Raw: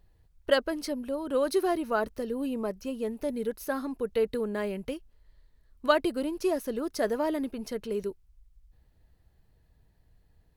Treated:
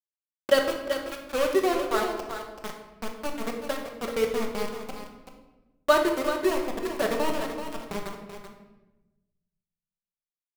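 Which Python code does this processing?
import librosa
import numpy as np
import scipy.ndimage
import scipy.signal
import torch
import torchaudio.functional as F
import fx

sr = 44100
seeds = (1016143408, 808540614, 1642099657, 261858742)

y = fx.wiener(x, sr, points=41)
y = fx.peak_eq(y, sr, hz=230.0, db=-9.5, octaves=0.26, at=(0.78, 2.96))
y = np.where(np.abs(y) >= 10.0 ** (-27.5 / 20.0), y, 0.0)
y = y + 10.0 ** (-9.0 / 20.0) * np.pad(y, (int(383 * sr / 1000.0), 0))[:len(y)]
y = fx.room_shoebox(y, sr, seeds[0], volume_m3=500.0, walls='mixed', distance_m=1.1)
y = y * librosa.db_to_amplitude(1.5)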